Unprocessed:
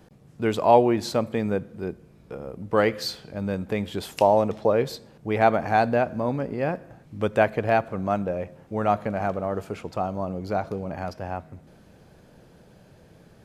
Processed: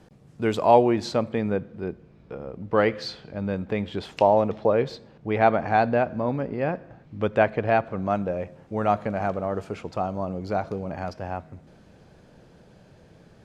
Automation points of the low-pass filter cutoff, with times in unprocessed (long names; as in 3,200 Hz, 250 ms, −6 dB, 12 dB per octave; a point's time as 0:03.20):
0:00.70 10,000 Hz
0:01.40 4,100 Hz
0:07.74 4,100 Hz
0:08.43 7,900 Hz